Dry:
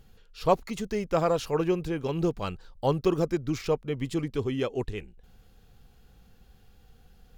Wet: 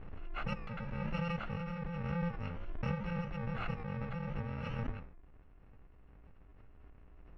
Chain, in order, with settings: bit-reversed sample order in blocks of 128 samples; low-pass 2.2 kHz 24 dB/octave; flange 0.61 Hz, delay 9.5 ms, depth 9.7 ms, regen -80%; swell ahead of each attack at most 22 dB/s; trim +1 dB

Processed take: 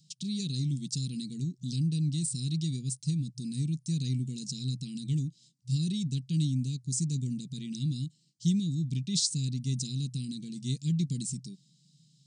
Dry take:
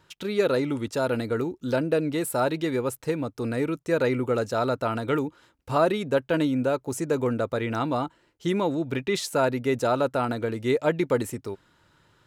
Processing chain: FFT band-pass 120–9400 Hz; elliptic band-stop 170–4600 Hz, stop band 60 dB; trim +6.5 dB

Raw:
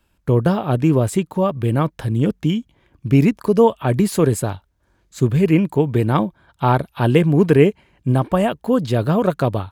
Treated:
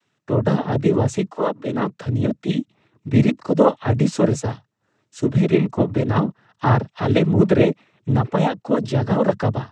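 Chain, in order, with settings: noise-vocoded speech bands 12; 1.30–2.05 s: high-pass 300 Hz -> 120 Hz 24 dB/octave; trim -1.5 dB

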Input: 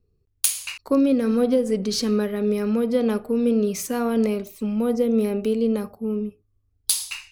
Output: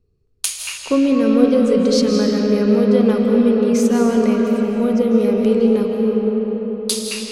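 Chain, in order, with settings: low-pass 8.6 kHz 12 dB/octave; algorithmic reverb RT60 4.9 s, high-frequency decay 0.55×, pre-delay 120 ms, DRR 0 dB; trim +3 dB

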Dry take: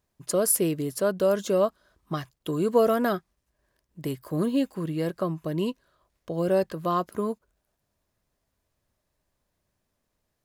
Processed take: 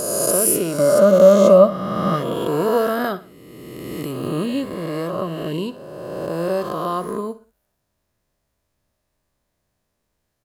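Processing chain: reverse spectral sustain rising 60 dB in 2.16 s; 0.78–2.34 s: small resonant body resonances 200/570/1200/2100 Hz, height 13 dB; on a send: feedback delay 60 ms, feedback 37%, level -16 dB

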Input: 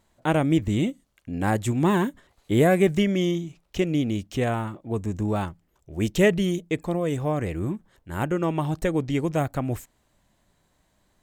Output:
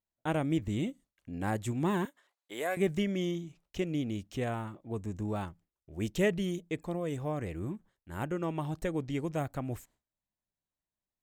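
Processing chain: 2.05–2.77 s: high-pass 660 Hz 12 dB/octave; gate with hold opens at -46 dBFS; trim -9 dB

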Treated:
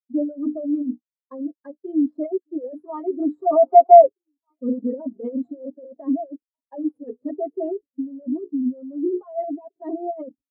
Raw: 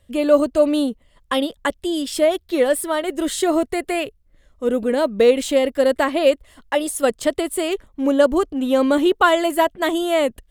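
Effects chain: median filter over 15 samples; hum notches 60/120/180/240/300/360/420/480 Hz; comb 7.4 ms, depth 84%; waveshaping leveller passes 3; compressor with a negative ratio -10 dBFS, ratio -0.5; high-pass 61 Hz 12 dB/octave; bass shelf 180 Hz +5 dB; on a send: repeats whose band climbs or falls 771 ms, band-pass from 2.7 kHz, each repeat -1.4 oct, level -12 dB; on the sum: time-frequency box 3.42–4.07 s, 500–1500 Hz +11 dB; waveshaping leveller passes 2; peaking EQ 2.4 kHz -3.5 dB 2.3 oct; spectral contrast expander 2.5:1; trim -8.5 dB

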